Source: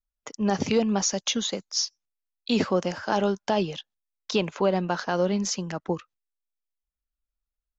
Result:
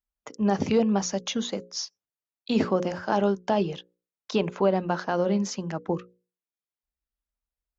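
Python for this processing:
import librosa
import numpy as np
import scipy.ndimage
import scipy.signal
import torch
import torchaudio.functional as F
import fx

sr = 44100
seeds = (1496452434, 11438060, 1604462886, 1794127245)

y = scipy.signal.sosfilt(scipy.signal.butter(2, 41.0, 'highpass', fs=sr, output='sos'), x)
y = fx.high_shelf(y, sr, hz=2100.0, db=-9.0)
y = fx.hum_notches(y, sr, base_hz=60, count=9)
y = y * librosa.db_to_amplitude(1.5)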